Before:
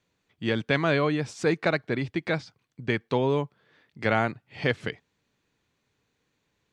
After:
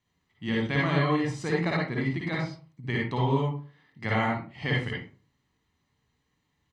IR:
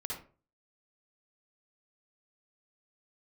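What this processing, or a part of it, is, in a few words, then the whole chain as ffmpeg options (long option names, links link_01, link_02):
microphone above a desk: -filter_complex "[0:a]aecho=1:1:1:0.52[link_01];[1:a]atrim=start_sample=2205[link_02];[link_01][link_02]afir=irnorm=-1:irlink=0,volume=-2.5dB"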